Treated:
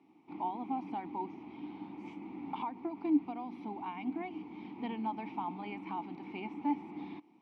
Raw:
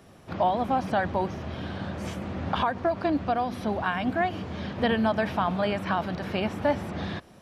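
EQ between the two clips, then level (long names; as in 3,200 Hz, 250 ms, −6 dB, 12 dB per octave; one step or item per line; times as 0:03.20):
formant filter u
high-pass filter 140 Hz 12 dB per octave
+1.0 dB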